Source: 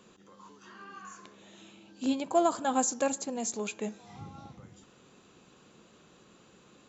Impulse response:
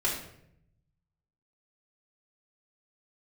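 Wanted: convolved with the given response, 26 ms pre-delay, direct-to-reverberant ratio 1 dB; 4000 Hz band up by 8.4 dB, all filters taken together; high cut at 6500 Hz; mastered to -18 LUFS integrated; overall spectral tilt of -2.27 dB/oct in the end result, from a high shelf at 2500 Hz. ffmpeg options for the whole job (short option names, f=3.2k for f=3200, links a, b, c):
-filter_complex "[0:a]lowpass=6.5k,highshelf=f=2.5k:g=6,equalizer=f=4k:t=o:g=6,asplit=2[a][b];[1:a]atrim=start_sample=2205,adelay=26[c];[b][c]afir=irnorm=-1:irlink=0,volume=-9.5dB[d];[a][d]amix=inputs=2:normalize=0,volume=9.5dB"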